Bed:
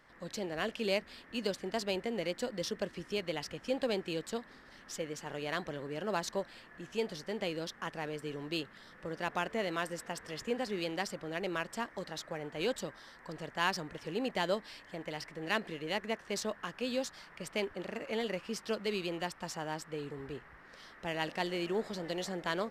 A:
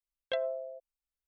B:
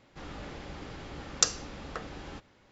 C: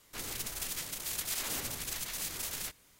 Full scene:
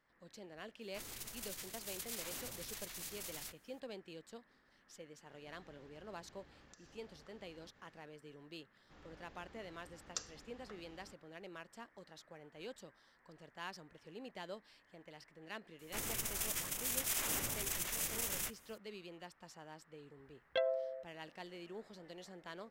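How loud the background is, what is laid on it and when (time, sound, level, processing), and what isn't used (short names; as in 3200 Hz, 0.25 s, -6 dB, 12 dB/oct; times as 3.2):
bed -15 dB
0.81 add C -9.5 dB
5.31 add B -7.5 dB + compressor 8:1, threshold -53 dBFS
8.74 add B -18 dB
15.79 add C -0.5 dB + bell 4300 Hz -7.5 dB 0.46 oct
20.24 add A -2 dB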